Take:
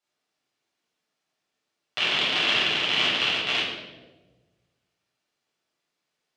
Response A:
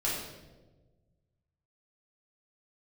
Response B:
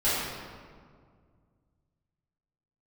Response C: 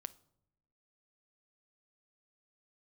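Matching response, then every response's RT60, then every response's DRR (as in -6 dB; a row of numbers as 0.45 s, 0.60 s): A; 1.2 s, 2.0 s, no single decay rate; -7.5 dB, -13.5 dB, 15.5 dB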